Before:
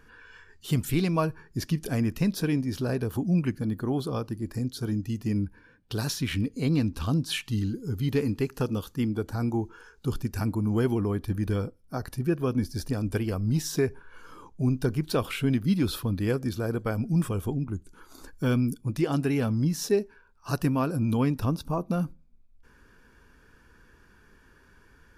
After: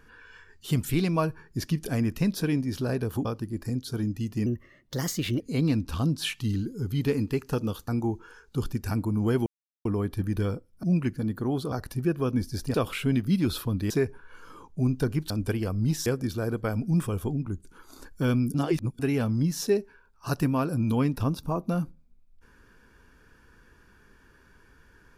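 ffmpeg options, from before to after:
-filter_complex "[0:a]asplit=14[a][b][c][d][e][f][g][h][i][j][k][l][m][n];[a]atrim=end=3.252[o];[b]atrim=start=4.138:end=5.354[p];[c]atrim=start=5.35:end=6.48,asetpts=PTS-STARTPTS,asetrate=52920,aresample=44100[q];[d]atrim=start=6.476:end=8.962[r];[e]atrim=start=9.378:end=10.96,asetpts=PTS-STARTPTS,afade=t=out:st=1.578:d=0.004:c=hsin,apad=pad_dur=0.39[s];[f]atrim=start=10.96:end=11.942,asetpts=PTS-STARTPTS,afade=t=in:d=0.004:c=hsin[t];[g]atrim=start=3.248:end=4.142[u];[h]atrim=start=11.938:end=12.962[v];[i]atrim=start=15.118:end=16.282[w];[j]atrim=start=13.718:end=15.122[x];[k]atrim=start=12.958:end=13.722[y];[l]atrim=start=16.278:end=18.762[z];[m]atrim=start=18.758:end=19.212,asetpts=PTS-STARTPTS,areverse[aa];[n]atrim=start=19.208[ab];[o][p]acrossfade=d=0.004:c1=hsin:c2=hsin[ac];[ac][q]acrossfade=d=0.004:c1=hsin:c2=hsin[ad];[ad][r]acrossfade=d=0.004:c1=hsin:c2=hsin[ae];[s][t]concat=n=2:v=0:a=1[af];[ae][af]acrossfade=d=0.004:c1=hsin:c2=hsin[ag];[ag][u]acrossfade=d=0.004:c1=hsin:c2=hsin[ah];[ah][v]acrossfade=d=0.004:c1=hsin:c2=hsin[ai];[ai][w]acrossfade=d=0.004:c1=hsin:c2=hsin[aj];[aj][x]acrossfade=d=0.004:c1=hsin:c2=hsin[ak];[ak][y]acrossfade=d=0.004:c1=hsin:c2=hsin[al];[al][z]acrossfade=d=0.004:c1=hsin:c2=hsin[am];[am][aa]acrossfade=d=0.004:c1=hsin:c2=hsin[an];[an][ab]acrossfade=d=0.004:c1=hsin:c2=hsin"

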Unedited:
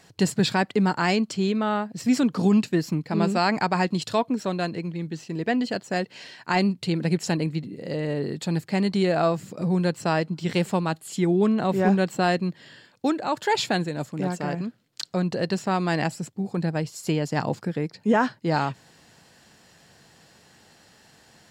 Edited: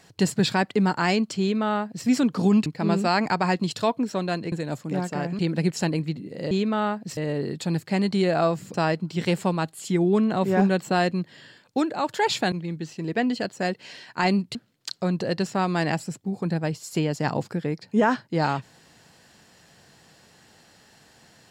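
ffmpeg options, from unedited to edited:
-filter_complex "[0:a]asplit=9[a][b][c][d][e][f][g][h][i];[a]atrim=end=2.662[j];[b]atrim=start=2.968:end=4.832[k];[c]atrim=start=13.798:end=14.672[l];[d]atrim=start=6.858:end=7.982[m];[e]atrim=start=1.398:end=2.062[n];[f]atrim=start=7.978:end=9.552[o];[g]atrim=start=10.018:end=13.802[p];[h]atrim=start=4.828:end=6.862[q];[i]atrim=start=14.668[r];[j][k]acrossfade=d=0.004:c1=hsin:c2=hsin[s];[s][l]acrossfade=d=0.004:c1=hsin:c2=hsin[t];[t][m]acrossfade=d=0.004:c1=hsin:c2=hsin[u];[u][n]acrossfade=d=0.004:c1=hsin:c2=hsin[v];[v][o]acrossfade=d=0.004:c1=hsin:c2=hsin[w];[w][p]acrossfade=d=0.004:c1=hsin:c2=hsin[x];[x][q]acrossfade=d=0.004:c1=hsin:c2=hsin[y];[y][r]acrossfade=d=0.004:c1=hsin:c2=hsin"

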